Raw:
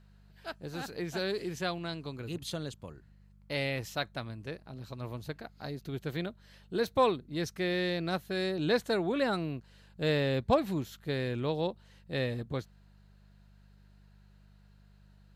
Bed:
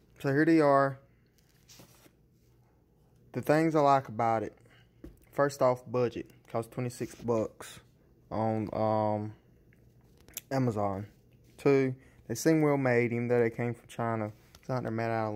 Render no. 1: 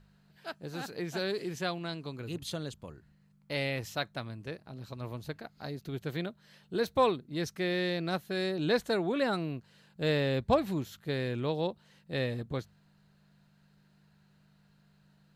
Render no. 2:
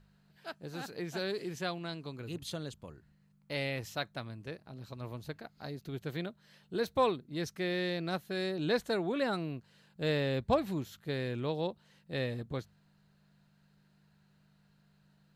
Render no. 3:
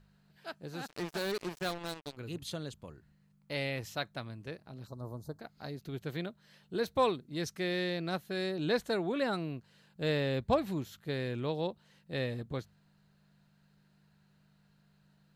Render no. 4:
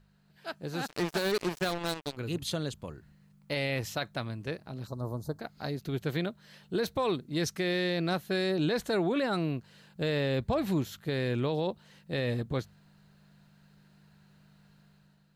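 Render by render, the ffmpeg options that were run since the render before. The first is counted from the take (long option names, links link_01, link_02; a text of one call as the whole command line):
ffmpeg -i in.wav -af "bandreject=frequency=50:width_type=h:width=4,bandreject=frequency=100:width_type=h:width=4" out.wav
ffmpeg -i in.wav -af "volume=-2.5dB" out.wav
ffmpeg -i in.wav -filter_complex "[0:a]asplit=3[link_01][link_02][link_03];[link_01]afade=type=out:start_time=0.86:duration=0.02[link_04];[link_02]acrusher=bits=5:mix=0:aa=0.5,afade=type=in:start_time=0.86:duration=0.02,afade=type=out:start_time=2.16:duration=0.02[link_05];[link_03]afade=type=in:start_time=2.16:duration=0.02[link_06];[link_04][link_05][link_06]amix=inputs=3:normalize=0,asettb=1/sr,asplit=3[link_07][link_08][link_09];[link_07]atrim=end=4.874[link_10];[link_08]atrim=start=4.87:end=5.4,asetpts=PTS-STARTPTS,afade=type=in:duration=0.004:curve=qsin,afade=type=out:start_time=0.526:duration=0.004:curve=qsin,asuperstop=centerf=2500:order=4:qfactor=0.57[link_11];[link_09]atrim=start=5.396[link_12];[link_10][link_11]acrossfade=duration=0.004:curve1=hsin:curve2=qsin[link_13];[link_13][link_12]acrossfade=duration=0.004:curve1=qsin:curve2=hsin,asettb=1/sr,asplit=3[link_14][link_15][link_16];[link_14]atrim=end=6.994[link_17];[link_15]atrim=start=6.99:end=7.84,asetpts=PTS-STARTPTS,afade=type=in:duration=0.004:curve=qsin,afade=type=out:start_time=0.846:duration=0.004:curve=qsin,equalizer=frequency=7600:width=0.62:gain=3.5[link_18];[link_16]atrim=start=7.836[link_19];[link_17][link_18]acrossfade=duration=0.004:curve1=hsin:curve2=qsin[link_20];[link_20][link_19]acrossfade=duration=0.004:curve1=qsin:curve2=hsin" out.wav
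ffmpeg -i in.wav -af "alimiter=level_in=4dB:limit=-24dB:level=0:latency=1:release=32,volume=-4dB,dynaudnorm=framelen=140:gausssize=7:maxgain=7dB" out.wav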